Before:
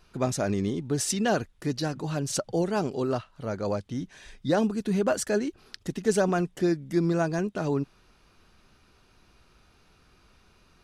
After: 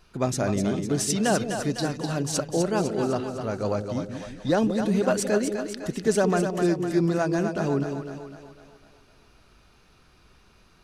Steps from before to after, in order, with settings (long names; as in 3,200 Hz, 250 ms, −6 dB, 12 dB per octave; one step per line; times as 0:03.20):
echo with a time of its own for lows and highs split 520 Hz, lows 175 ms, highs 252 ms, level −6.5 dB
level +1.5 dB